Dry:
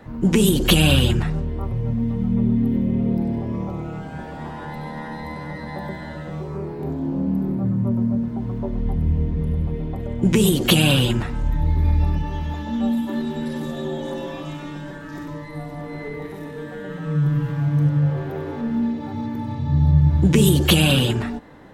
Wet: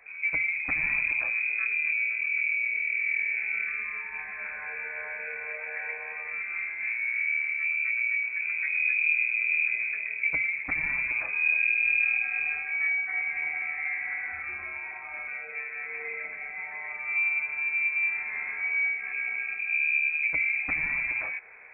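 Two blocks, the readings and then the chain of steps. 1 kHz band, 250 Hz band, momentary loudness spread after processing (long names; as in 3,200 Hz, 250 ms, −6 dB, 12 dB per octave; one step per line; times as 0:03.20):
−12.0 dB, below −35 dB, 11 LU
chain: speech leveller within 4 dB 0.5 s
voice inversion scrambler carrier 2,500 Hz
level −8.5 dB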